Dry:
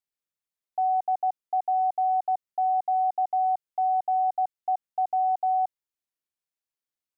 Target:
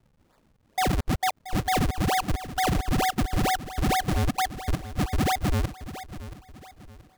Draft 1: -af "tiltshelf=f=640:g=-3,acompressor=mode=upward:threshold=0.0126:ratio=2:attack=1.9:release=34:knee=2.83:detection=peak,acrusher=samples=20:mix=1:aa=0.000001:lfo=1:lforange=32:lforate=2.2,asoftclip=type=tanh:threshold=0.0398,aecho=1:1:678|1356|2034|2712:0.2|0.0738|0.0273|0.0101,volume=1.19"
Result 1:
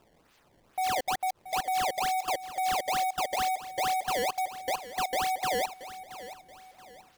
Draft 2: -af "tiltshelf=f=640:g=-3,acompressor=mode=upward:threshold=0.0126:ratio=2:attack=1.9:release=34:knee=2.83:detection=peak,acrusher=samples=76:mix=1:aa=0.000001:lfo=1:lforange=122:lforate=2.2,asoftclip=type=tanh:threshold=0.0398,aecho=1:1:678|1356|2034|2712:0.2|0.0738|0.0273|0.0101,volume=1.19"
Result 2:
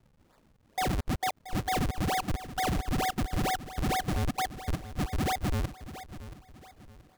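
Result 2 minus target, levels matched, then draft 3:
saturation: distortion +12 dB
-af "tiltshelf=f=640:g=-3,acompressor=mode=upward:threshold=0.0126:ratio=2:attack=1.9:release=34:knee=2.83:detection=peak,acrusher=samples=76:mix=1:aa=0.000001:lfo=1:lforange=122:lforate=2.2,asoftclip=type=tanh:threshold=0.112,aecho=1:1:678|1356|2034|2712:0.2|0.0738|0.0273|0.0101,volume=1.19"

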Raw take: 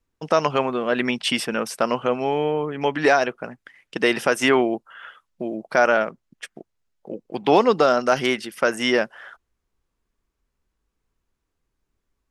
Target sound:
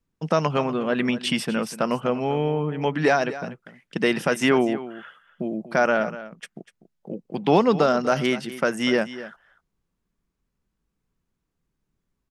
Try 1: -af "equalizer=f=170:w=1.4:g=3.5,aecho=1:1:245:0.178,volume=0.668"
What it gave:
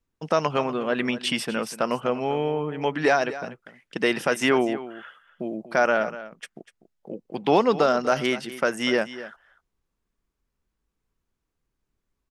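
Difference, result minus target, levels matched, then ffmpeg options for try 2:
125 Hz band -5.5 dB
-af "equalizer=f=170:w=1.4:g=11.5,aecho=1:1:245:0.178,volume=0.668"

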